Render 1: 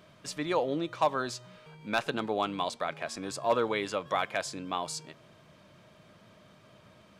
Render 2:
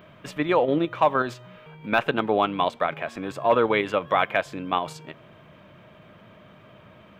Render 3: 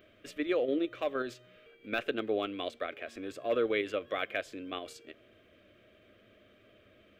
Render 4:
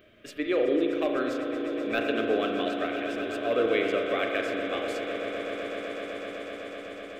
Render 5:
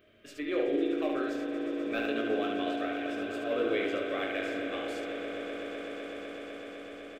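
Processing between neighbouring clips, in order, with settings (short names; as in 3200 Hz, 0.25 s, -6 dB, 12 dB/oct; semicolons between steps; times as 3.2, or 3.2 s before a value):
band shelf 6800 Hz -15.5 dB; in parallel at 0 dB: level quantiser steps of 16 dB; on the sum: gain +4 dB
fixed phaser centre 380 Hz, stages 4; gain -6.5 dB
on a send: swelling echo 0.126 s, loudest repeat 8, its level -14.5 dB; on the sum: spring tank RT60 2.3 s, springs 35 ms, chirp 55 ms, DRR 2.5 dB; gain +3 dB
early reflections 21 ms -4.5 dB, 73 ms -4 dB; gain -7 dB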